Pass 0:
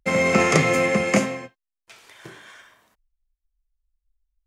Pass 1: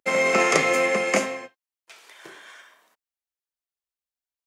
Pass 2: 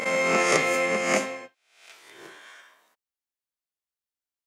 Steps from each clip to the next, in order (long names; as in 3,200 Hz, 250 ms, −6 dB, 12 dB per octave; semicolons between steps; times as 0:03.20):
high-pass filter 360 Hz 12 dB per octave
peak hold with a rise ahead of every peak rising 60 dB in 0.65 s; level −4 dB